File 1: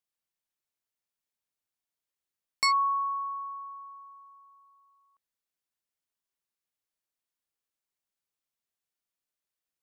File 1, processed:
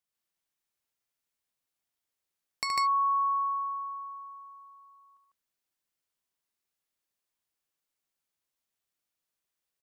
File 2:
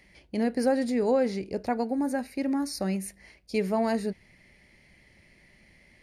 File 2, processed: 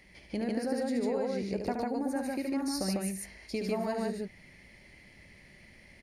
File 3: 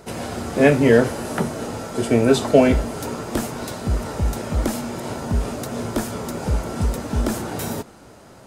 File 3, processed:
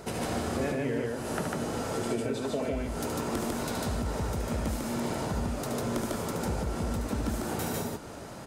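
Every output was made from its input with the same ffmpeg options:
-filter_complex "[0:a]acompressor=threshold=-31dB:ratio=8,asplit=2[link_01][link_02];[link_02]aecho=0:1:72.89|148.7:0.501|0.891[link_03];[link_01][link_03]amix=inputs=2:normalize=0"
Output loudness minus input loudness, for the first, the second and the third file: −0.5, −5.0, −10.5 LU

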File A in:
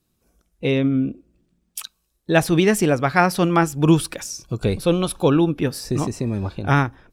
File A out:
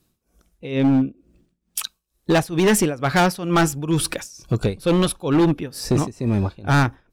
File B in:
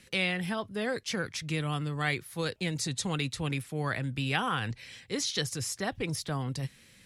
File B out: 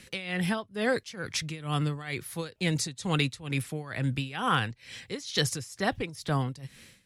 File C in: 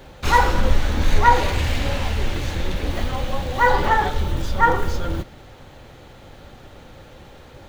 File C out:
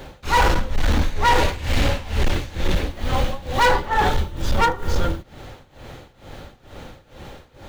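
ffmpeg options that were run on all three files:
-af "tremolo=f=2.2:d=0.88,volume=18.5dB,asoftclip=hard,volume=-18.5dB,volume=6dB"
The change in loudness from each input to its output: −0.5, +1.5, −0.5 LU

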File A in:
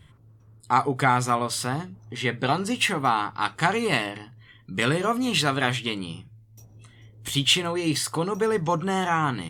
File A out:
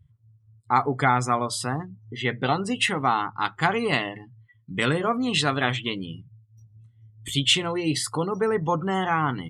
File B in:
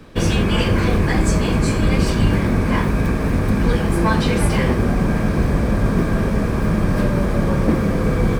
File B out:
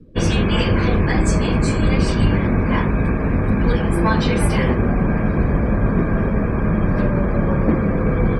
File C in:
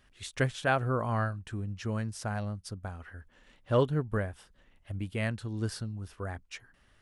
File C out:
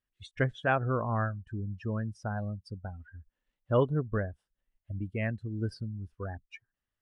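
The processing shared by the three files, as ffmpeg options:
-af "afftdn=noise_reduction=26:noise_floor=-37"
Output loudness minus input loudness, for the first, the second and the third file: 0.0, 0.0, 0.0 LU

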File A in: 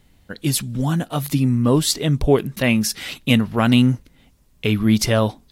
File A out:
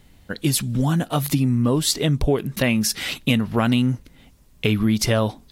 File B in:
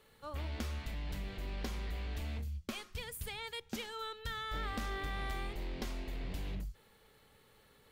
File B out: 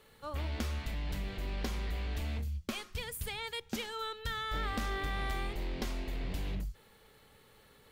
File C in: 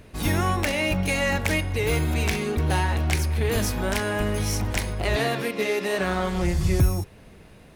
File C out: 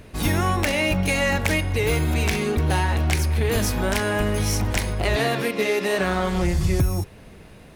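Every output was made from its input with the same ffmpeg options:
-af "acompressor=threshold=-20dB:ratio=4,volume=3.5dB"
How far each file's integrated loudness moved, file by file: −2.0, +3.5, +2.0 LU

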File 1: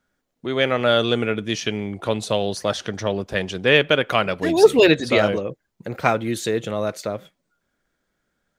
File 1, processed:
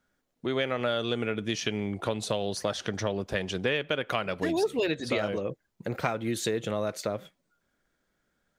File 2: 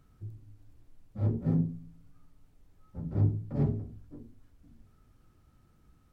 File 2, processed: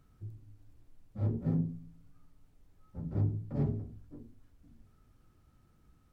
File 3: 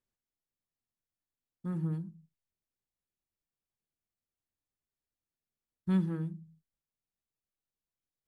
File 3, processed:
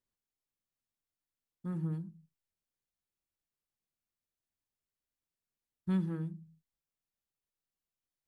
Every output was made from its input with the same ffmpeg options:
-af "acompressor=threshold=-23dB:ratio=6,volume=-2dB"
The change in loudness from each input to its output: −10.0, −4.5, −2.5 LU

